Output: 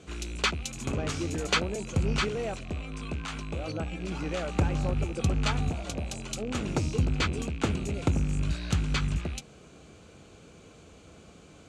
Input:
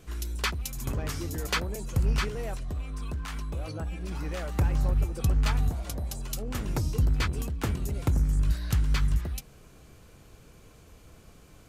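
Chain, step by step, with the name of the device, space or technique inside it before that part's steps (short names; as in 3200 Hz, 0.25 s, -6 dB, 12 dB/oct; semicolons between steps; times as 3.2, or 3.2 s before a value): car door speaker with a rattle (rattling part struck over -34 dBFS, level -37 dBFS; speaker cabinet 95–7700 Hz, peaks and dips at 120 Hz -8 dB, 1000 Hz -5 dB, 1800 Hz -6 dB, 5200 Hz -6 dB); gain +5 dB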